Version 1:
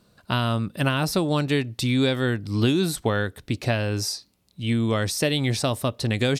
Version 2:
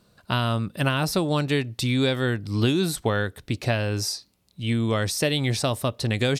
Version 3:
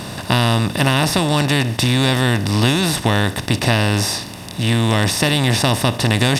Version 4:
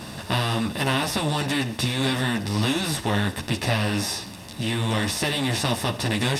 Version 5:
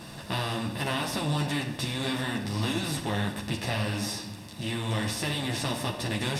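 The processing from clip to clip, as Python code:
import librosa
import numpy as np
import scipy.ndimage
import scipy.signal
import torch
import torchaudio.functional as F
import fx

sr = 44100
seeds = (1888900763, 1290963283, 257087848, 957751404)

y1 = fx.peak_eq(x, sr, hz=260.0, db=-2.0, octaves=0.77)
y2 = fx.bin_compress(y1, sr, power=0.4)
y2 = y2 + 0.5 * np.pad(y2, (int(1.1 * sr / 1000.0), 0))[:len(y2)]
y2 = F.gain(torch.from_numpy(y2), 2.0).numpy()
y3 = fx.ensemble(y2, sr)
y3 = F.gain(torch.from_numpy(y3), -4.0).numpy()
y4 = fx.room_shoebox(y3, sr, seeds[0], volume_m3=680.0, walls='mixed', distance_m=0.75)
y4 = F.gain(torch.from_numpy(y4), -7.0).numpy()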